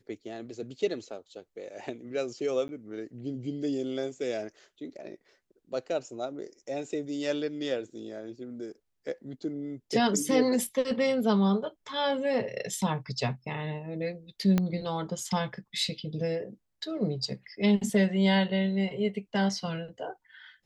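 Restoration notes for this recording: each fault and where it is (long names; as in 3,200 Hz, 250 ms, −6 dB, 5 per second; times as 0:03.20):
0:02.68–0:02.69: drop-out 10 ms
0:14.58: click −13 dBFS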